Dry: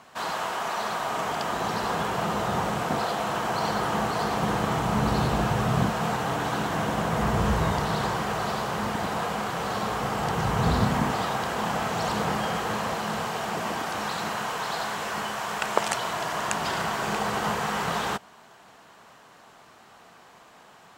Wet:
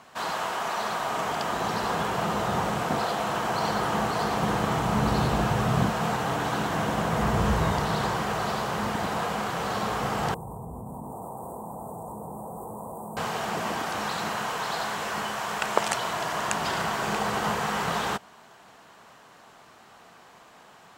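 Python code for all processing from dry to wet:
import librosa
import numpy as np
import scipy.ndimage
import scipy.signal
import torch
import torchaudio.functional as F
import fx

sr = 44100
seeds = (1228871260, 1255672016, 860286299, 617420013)

y = fx.chain(x, sr, fx.cheby1_bandstop(low_hz=980.0, high_hz=8500.0, order=4),
    fx.high_shelf(hz=6600.0, db=5.5),
    fx.level_steps(step_db=19), at=(10.34, 13.17))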